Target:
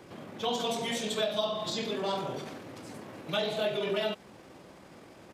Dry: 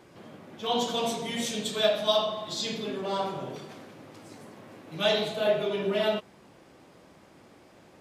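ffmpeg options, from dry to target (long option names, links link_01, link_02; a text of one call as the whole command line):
ffmpeg -i in.wav -filter_complex "[0:a]acrossover=split=420|2100[link_01][link_02][link_03];[link_01]acompressor=threshold=-40dB:ratio=4[link_04];[link_02]acompressor=threshold=-35dB:ratio=4[link_05];[link_03]acompressor=threshold=-39dB:ratio=4[link_06];[link_04][link_05][link_06]amix=inputs=3:normalize=0,atempo=1.5,volume=3.5dB" out.wav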